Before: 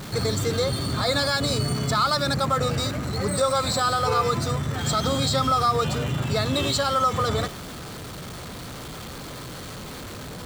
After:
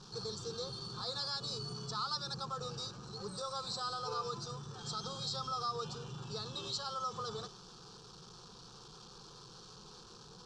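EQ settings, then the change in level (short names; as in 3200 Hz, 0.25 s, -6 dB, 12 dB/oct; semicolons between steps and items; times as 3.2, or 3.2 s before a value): ladder low-pass 6100 Hz, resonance 55%; bell 170 Hz -3 dB 1.1 oct; fixed phaser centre 410 Hz, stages 8; -5.0 dB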